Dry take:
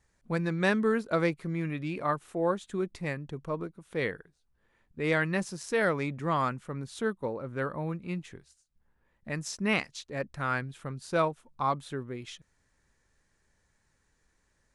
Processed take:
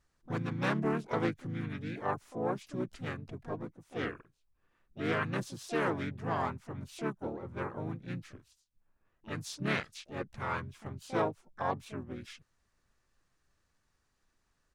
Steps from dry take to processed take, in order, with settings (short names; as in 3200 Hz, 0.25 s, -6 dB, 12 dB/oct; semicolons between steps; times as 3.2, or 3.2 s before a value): harmoniser -7 st -1 dB, -3 st -4 dB, +7 st -8 dB; Doppler distortion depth 0.16 ms; gain -8.5 dB